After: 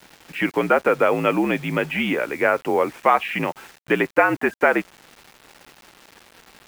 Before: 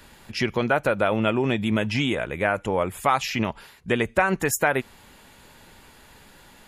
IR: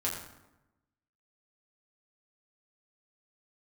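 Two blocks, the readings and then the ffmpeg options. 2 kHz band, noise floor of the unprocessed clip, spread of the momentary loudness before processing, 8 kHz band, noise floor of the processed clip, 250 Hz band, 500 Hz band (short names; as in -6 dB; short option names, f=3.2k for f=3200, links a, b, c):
+3.5 dB, -52 dBFS, 6 LU, under -10 dB, -55 dBFS, +1.5 dB, +4.0 dB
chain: -af "aeval=exprs='val(0)+0.00282*(sin(2*PI*60*n/s)+sin(2*PI*2*60*n/s)/2+sin(2*PI*3*60*n/s)/3+sin(2*PI*4*60*n/s)/4+sin(2*PI*5*60*n/s)/5)':c=same,highpass=f=280:t=q:w=0.5412,highpass=f=280:t=q:w=1.307,lowpass=f=2.9k:t=q:w=0.5176,lowpass=f=2.9k:t=q:w=0.7071,lowpass=f=2.9k:t=q:w=1.932,afreqshift=-59,acrusher=bits=7:mix=0:aa=0.000001,volume=4.5dB"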